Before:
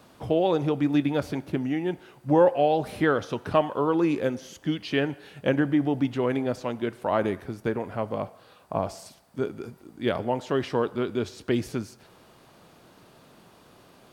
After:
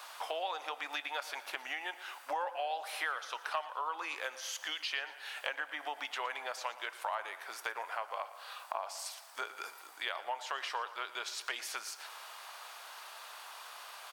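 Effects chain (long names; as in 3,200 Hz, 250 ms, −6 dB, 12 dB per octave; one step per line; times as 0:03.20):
high-pass filter 850 Hz 24 dB per octave
downward compressor 4 to 1, threshold −47 dBFS, peak gain reduction 21 dB
on a send: repeating echo 116 ms, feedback 52%, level −17 dB
on the sum: level +10 dB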